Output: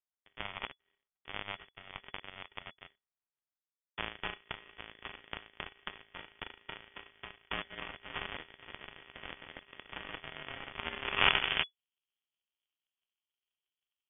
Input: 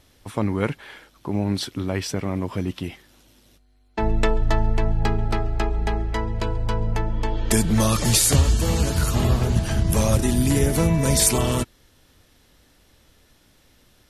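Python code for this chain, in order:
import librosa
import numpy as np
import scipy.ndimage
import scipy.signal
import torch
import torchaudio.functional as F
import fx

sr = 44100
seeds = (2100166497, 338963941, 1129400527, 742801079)

p1 = fx.lower_of_two(x, sr, delay_ms=0.89)
p2 = fx.rider(p1, sr, range_db=5, speed_s=0.5)
p3 = p1 + (p2 * 10.0 ** (-1.0 / 20.0))
p4 = fx.sample_hold(p3, sr, seeds[0], rate_hz=1500.0, jitter_pct=0)
p5 = fx.filter_sweep_highpass(p4, sr, from_hz=2400.0, to_hz=160.0, start_s=10.63, end_s=11.87, q=0.98)
p6 = fx.cheby_harmonics(p5, sr, harmonics=(2, 3, 6, 7), levels_db=(-8, -42, -24, -17), full_scale_db=-3.5)
p7 = fx.mod_noise(p6, sr, seeds[1], snr_db=33)
p8 = fx.freq_invert(p7, sr, carrier_hz=3400)
y = p8 * 10.0 ** (-4.5 / 20.0)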